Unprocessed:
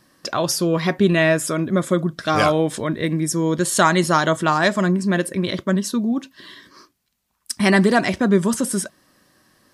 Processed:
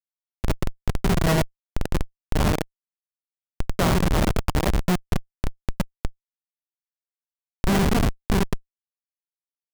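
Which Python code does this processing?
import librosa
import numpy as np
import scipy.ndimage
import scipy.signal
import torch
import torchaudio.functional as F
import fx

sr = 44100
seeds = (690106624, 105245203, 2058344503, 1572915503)

y = fx.law_mismatch(x, sr, coded='A')
y = fx.rev_gated(y, sr, seeds[0], gate_ms=110, shape='rising', drr_db=-0.5)
y = fx.schmitt(y, sr, flips_db=-8.5)
y = y * librosa.db_to_amplitude(-1.5)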